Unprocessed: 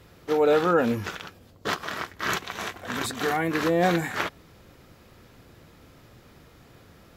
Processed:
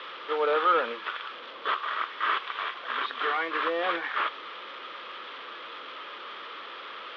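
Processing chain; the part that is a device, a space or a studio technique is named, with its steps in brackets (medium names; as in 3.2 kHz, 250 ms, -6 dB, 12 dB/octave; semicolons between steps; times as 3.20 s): digital answering machine (band-pass 400–3300 Hz; one-bit delta coder 32 kbps, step -36 dBFS; cabinet simulation 490–3500 Hz, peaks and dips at 730 Hz -9 dB, 1.2 kHz +9 dB, 3.3 kHz +9 dB)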